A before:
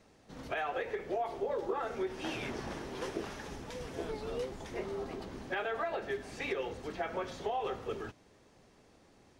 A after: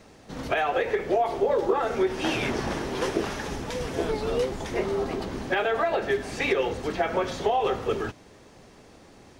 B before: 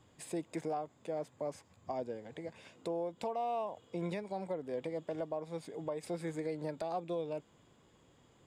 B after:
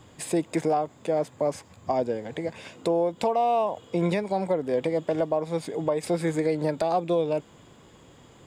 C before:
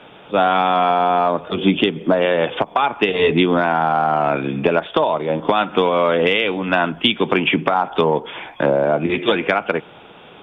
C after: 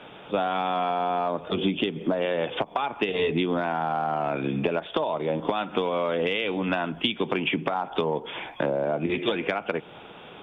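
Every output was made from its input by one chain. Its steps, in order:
compression 4:1, threshold -20 dBFS; dynamic bell 1.4 kHz, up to -3 dB, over -39 dBFS, Q 1.1; normalise loudness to -27 LUFS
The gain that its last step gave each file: +11.5 dB, +13.0 dB, -2.0 dB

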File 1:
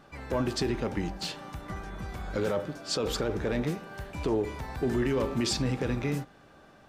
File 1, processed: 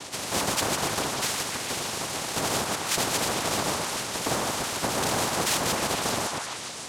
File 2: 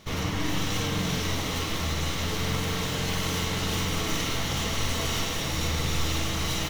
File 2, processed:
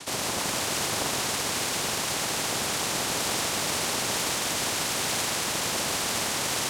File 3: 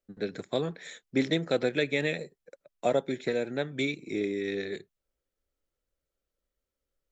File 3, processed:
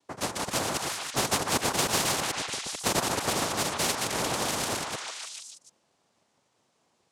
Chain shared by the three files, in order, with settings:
chunks repeated in reverse 110 ms, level -5 dB; noise-vocoded speech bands 2; on a send: repeats whose band climbs or falls 148 ms, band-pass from 1.1 kHz, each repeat 0.7 oct, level -3 dB; on the sum: spectrum-flattening compressor 2:1; trim -1 dB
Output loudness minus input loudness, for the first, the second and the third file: +5.0 LU, +2.0 LU, +2.5 LU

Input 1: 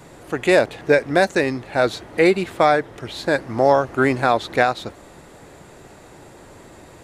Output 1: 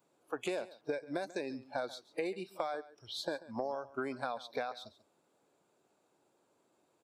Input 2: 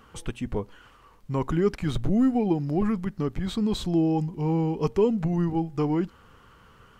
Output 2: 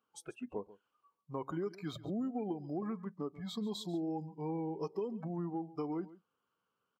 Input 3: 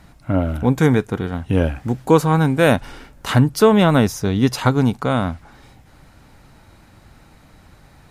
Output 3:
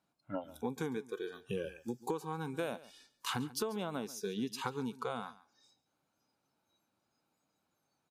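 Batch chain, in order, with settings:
spectral noise reduction 21 dB; high-pass 230 Hz 12 dB/octave; peaking EQ 1.9 kHz -12 dB 0.25 oct; compression 12:1, threshold -26 dBFS; delay 139 ms -18 dB; trim -7.5 dB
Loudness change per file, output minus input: -21.0 LU, -14.0 LU, -22.0 LU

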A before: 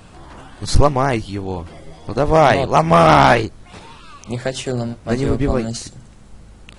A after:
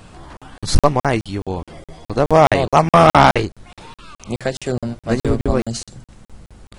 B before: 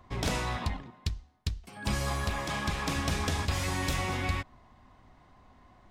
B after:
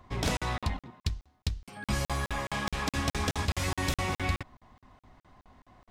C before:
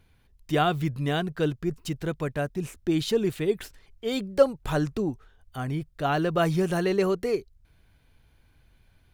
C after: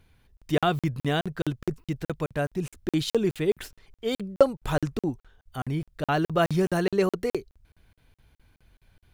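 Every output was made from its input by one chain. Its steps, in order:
crackling interface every 0.21 s, samples 2048, zero, from 0.37 s; trim +1 dB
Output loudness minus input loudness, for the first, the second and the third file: 0.0 LU, 0.0 LU, -0.5 LU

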